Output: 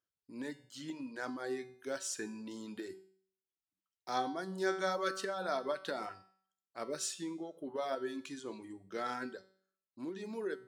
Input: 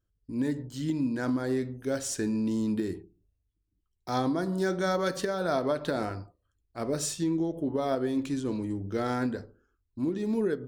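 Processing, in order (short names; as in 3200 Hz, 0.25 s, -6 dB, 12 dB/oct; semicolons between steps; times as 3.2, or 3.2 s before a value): weighting filter A; reverb removal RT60 0.83 s; resonator 190 Hz, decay 0.57 s, harmonics all, mix 70%; gain +4.5 dB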